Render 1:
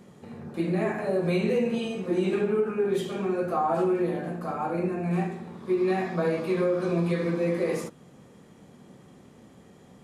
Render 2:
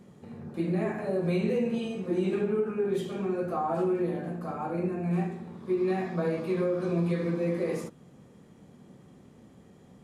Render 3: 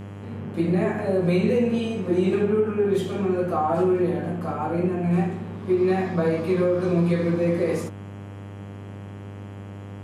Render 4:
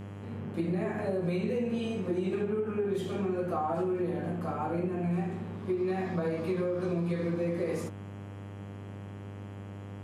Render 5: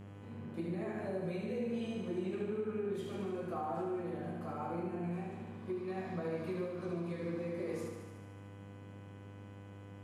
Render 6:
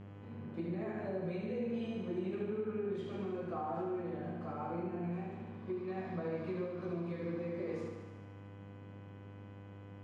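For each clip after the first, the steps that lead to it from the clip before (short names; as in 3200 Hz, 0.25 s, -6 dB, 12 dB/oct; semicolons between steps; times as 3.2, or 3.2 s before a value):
low shelf 380 Hz +5.5 dB; gain -5.5 dB
buzz 100 Hz, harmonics 33, -44 dBFS -7 dB/oct; gain +6.5 dB
compressor, threshold -22 dBFS, peak gain reduction 6 dB; gain -5 dB
thinning echo 74 ms, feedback 72%, high-pass 190 Hz, level -6 dB; gain -8.5 dB
air absorption 130 m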